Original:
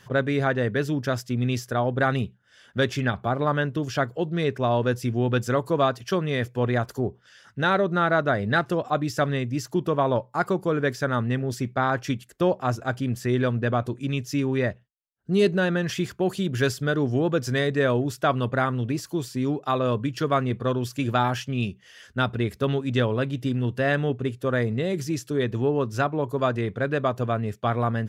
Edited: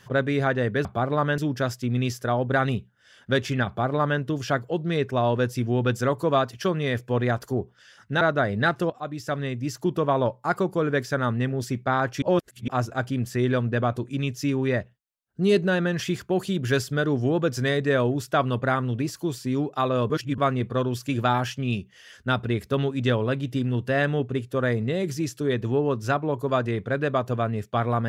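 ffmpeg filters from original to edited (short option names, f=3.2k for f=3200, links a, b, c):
-filter_complex "[0:a]asplit=9[a][b][c][d][e][f][g][h][i];[a]atrim=end=0.852[j];[b]atrim=start=3.138:end=3.672[k];[c]atrim=start=0.848:end=7.682[l];[d]atrim=start=8.108:end=8.8,asetpts=PTS-STARTPTS,afade=t=out:st=0.688:d=0.004:c=hsin:silence=0.251189[m];[e]atrim=start=8.8:end=12.122,asetpts=PTS-STARTPTS,afade=t=in:d=0.94:silence=0.251189[n];[f]atrim=start=12.118:end=12.582,asetpts=PTS-STARTPTS,areverse[o];[g]atrim=start=12.578:end=20.002[p];[h]atrim=start=19.998:end=20.282,asetpts=PTS-STARTPTS,areverse[q];[i]atrim=start=20.278[r];[j][k]acrossfade=d=0.004:c1=hsin:c2=hsin[s];[s][l]acrossfade=d=0.004:c1=hsin:c2=hsin[t];[m][n]concat=n=2:v=0:a=1[u];[t][u]acrossfade=d=0.004:c1=hsin:c2=hsin[v];[v][o]acrossfade=d=0.004:c1=hsin:c2=hsin[w];[w][p]acrossfade=d=0.004:c1=hsin:c2=hsin[x];[x][q]acrossfade=d=0.004:c1=hsin:c2=hsin[y];[y][r]acrossfade=d=0.004:c1=hsin:c2=hsin"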